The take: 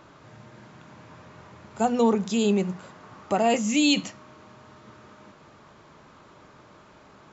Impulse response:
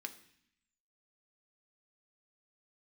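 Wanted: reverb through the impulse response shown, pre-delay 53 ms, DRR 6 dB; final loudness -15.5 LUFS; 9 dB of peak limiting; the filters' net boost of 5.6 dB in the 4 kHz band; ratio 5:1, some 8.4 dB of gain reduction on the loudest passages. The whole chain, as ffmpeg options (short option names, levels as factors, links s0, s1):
-filter_complex "[0:a]equalizer=f=4000:t=o:g=7,acompressor=threshold=0.0631:ratio=5,alimiter=limit=0.0668:level=0:latency=1,asplit=2[s0][s1];[1:a]atrim=start_sample=2205,adelay=53[s2];[s1][s2]afir=irnorm=-1:irlink=0,volume=0.631[s3];[s0][s3]amix=inputs=2:normalize=0,volume=7.08"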